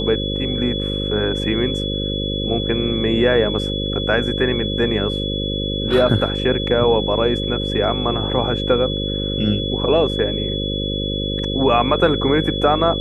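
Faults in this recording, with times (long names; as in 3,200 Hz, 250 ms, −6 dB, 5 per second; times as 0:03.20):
mains buzz 50 Hz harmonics 11 −24 dBFS
whistle 3,400 Hz −25 dBFS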